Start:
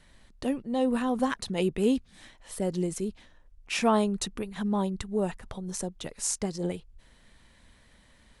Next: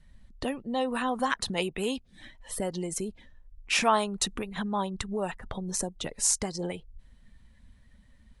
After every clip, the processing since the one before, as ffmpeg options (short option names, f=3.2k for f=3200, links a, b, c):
-filter_complex "[0:a]afftdn=nr=15:nf=-52,acrossover=split=690[a][b];[a]acompressor=threshold=-37dB:ratio=6[c];[c][b]amix=inputs=2:normalize=0,volume=5dB"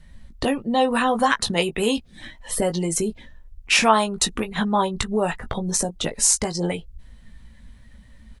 -filter_complex "[0:a]asplit=2[a][b];[b]alimiter=limit=-17.5dB:level=0:latency=1:release=376,volume=2dB[c];[a][c]amix=inputs=2:normalize=0,asplit=2[d][e];[e]adelay=18,volume=-7.5dB[f];[d][f]amix=inputs=2:normalize=0,volume=2dB"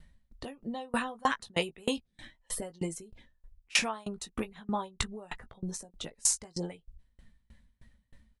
-af "aeval=exprs='val(0)*pow(10,-30*if(lt(mod(3.2*n/s,1),2*abs(3.2)/1000),1-mod(3.2*n/s,1)/(2*abs(3.2)/1000),(mod(3.2*n/s,1)-2*abs(3.2)/1000)/(1-2*abs(3.2)/1000))/20)':c=same,volume=-5dB"